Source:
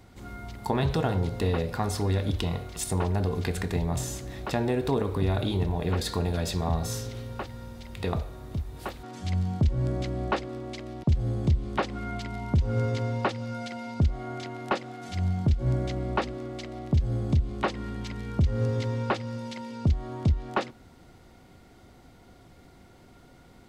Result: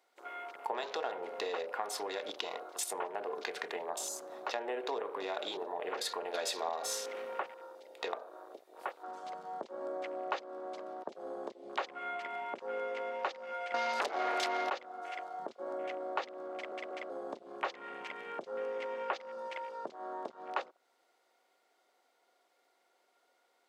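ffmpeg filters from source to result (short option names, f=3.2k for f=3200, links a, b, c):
-filter_complex "[0:a]asettb=1/sr,asplit=3[a][b][c];[a]atrim=end=13.744[d];[b]atrim=start=13.74:end=14.7,asetpts=PTS-STARTPTS,afade=t=in:d=0.004:c=qsin,afade=t=out:st=0.956:d=0.004:c=qsin,aeval=exprs='0.158*sin(PI/2*5.62*val(0)/0.158)':c=same[e];[c]atrim=start=14.696[f];[d][e]acrossfade=d=0.004:c1=hsin:c2=qsin[g];[g][f]acrossfade=d=0.004:c1=qsin:c2=hsin,asplit=6[h][i][j][k][l][m];[h]atrim=end=6.342[n];[i]atrim=start=6.338:end=7.542,asetpts=PTS-STARTPTS,volume=4.5dB[o];[j]atrim=start=7.538:end=16.722[p];[k]atrim=start=16.528:end=16.722[q];[l]atrim=start=16.528:end=16.722[r];[m]atrim=start=17.098[s];[n][o]acrossfade=d=0.004:c1=hsin:c2=hsin[t];[t][p]acrossfade=d=0.004:c1=hsin:c2=hsin[u];[u][q]acrossfade=d=0.004:c1=hsin:c2=hsin[v];[v][r]acrossfade=d=0.004:c1=hsin:c2=hsin[w];[w][s]acrossfade=d=0.004:c1=hsin:c2=hsin,highpass=f=470:w=0.5412,highpass=f=470:w=1.3066,afwtdn=0.00562,acompressor=threshold=-39dB:ratio=2.5,volume=2.5dB"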